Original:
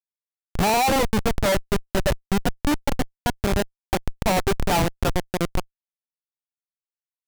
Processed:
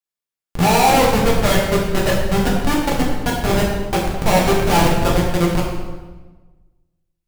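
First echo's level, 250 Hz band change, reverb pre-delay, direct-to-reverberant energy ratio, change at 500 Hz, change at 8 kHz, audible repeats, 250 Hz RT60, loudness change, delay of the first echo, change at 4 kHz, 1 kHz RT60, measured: no echo audible, +7.0 dB, 3 ms, −4.0 dB, +7.0 dB, +5.5 dB, no echo audible, 1.5 s, +6.5 dB, no echo audible, +6.0 dB, 1.2 s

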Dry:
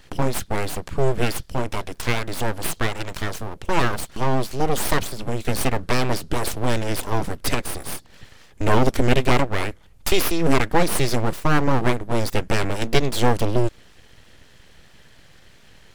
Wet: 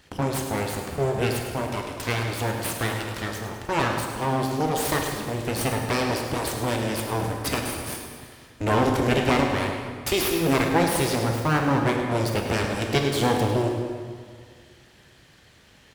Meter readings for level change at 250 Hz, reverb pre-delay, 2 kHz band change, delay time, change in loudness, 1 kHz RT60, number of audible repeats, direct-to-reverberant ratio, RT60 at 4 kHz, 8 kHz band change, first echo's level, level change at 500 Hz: −0.5 dB, 16 ms, −1.5 dB, 105 ms, −1.5 dB, 1.9 s, 2, 2.0 dB, 1.5 s, −1.5 dB, −10.5 dB, −1.0 dB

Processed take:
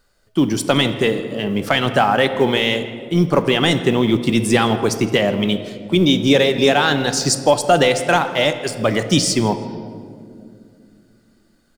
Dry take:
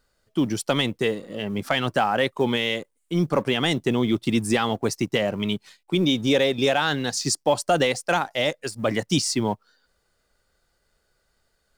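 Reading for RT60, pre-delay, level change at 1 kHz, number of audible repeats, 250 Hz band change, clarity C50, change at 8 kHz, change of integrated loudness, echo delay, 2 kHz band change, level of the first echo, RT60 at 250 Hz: 2.4 s, 3 ms, +7.0 dB, 1, +6.5 dB, 10.5 dB, +6.0 dB, +6.5 dB, 163 ms, +6.5 dB, −20.5 dB, 3.6 s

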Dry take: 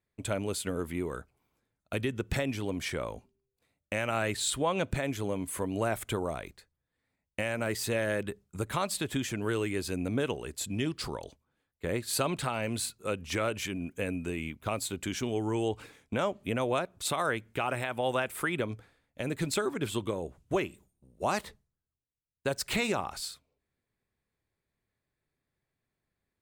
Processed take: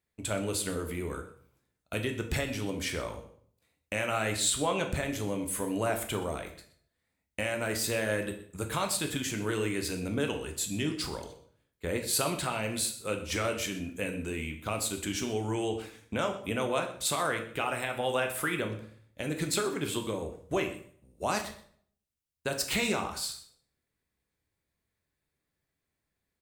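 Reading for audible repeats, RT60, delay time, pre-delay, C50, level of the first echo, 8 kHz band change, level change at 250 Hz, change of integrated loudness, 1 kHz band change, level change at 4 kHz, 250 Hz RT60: 1, 0.55 s, 125 ms, 7 ms, 9.5 dB, −18.5 dB, +4.0 dB, −0.5 dB, +1.0 dB, 0.0 dB, +2.5 dB, 0.65 s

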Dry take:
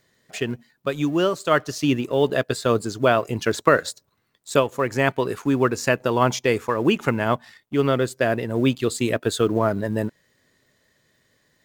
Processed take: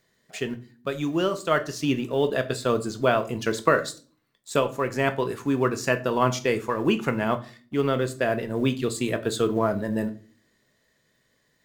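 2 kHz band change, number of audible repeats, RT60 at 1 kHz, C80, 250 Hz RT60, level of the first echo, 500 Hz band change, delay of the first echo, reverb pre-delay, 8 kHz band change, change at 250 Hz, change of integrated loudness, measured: −3.5 dB, no echo audible, 0.35 s, 21.0 dB, 0.65 s, no echo audible, −3.0 dB, no echo audible, 3 ms, −3.5 dB, −3.0 dB, −3.5 dB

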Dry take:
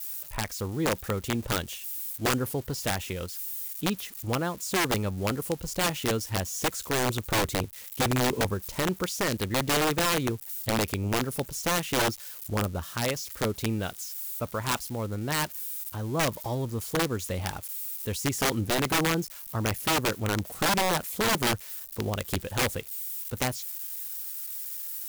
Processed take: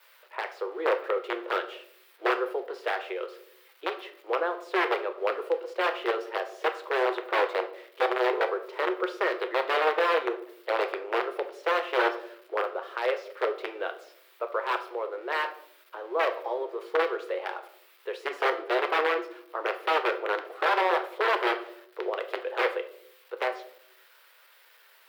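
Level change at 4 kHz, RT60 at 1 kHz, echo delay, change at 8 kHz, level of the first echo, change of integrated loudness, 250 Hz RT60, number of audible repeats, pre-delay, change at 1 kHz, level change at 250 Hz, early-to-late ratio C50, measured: −6.5 dB, 0.55 s, no echo audible, below −25 dB, no echo audible, 0.0 dB, 1.0 s, no echo audible, 6 ms, +3.0 dB, −8.5 dB, 12.5 dB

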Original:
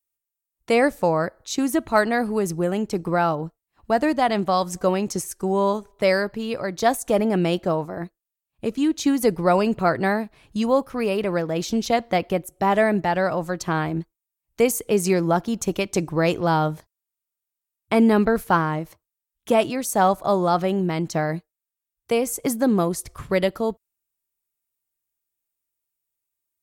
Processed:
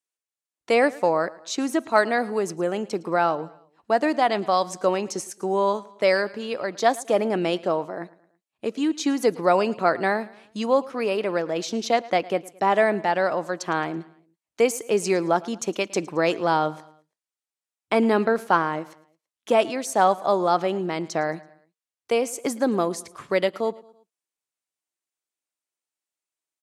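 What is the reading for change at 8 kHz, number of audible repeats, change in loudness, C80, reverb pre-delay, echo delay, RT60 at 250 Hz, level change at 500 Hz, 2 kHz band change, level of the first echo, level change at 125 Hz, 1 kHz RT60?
−3.0 dB, 3, −1.5 dB, no reverb audible, no reverb audible, 110 ms, no reverb audible, −0.5 dB, 0.0 dB, −21.0 dB, −9.0 dB, no reverb audible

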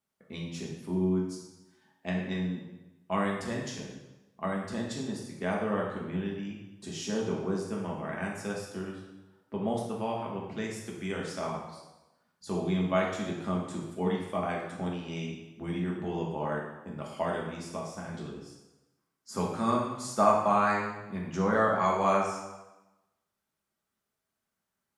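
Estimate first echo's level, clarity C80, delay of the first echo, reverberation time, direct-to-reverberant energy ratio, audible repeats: no echo audible, 5.5 dB, no echo audible, 1.1 s, −2.5 dB, no echo audible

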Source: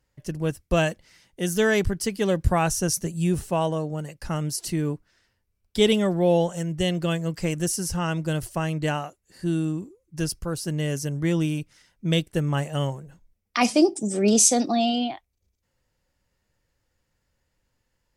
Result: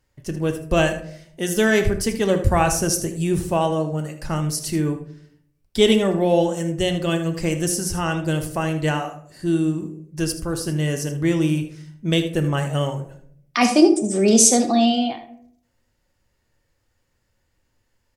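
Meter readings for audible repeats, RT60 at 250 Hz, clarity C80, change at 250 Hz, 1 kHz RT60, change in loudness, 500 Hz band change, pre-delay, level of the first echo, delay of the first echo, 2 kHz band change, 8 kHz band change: 1, 0.85 s, 14.5 dB, +4.5 dB, 0.55 s, +4.0 dB, +4.0 dB, 3 ms, −12.5 dB, 78 ms, +4.0 dB, +3.5 dB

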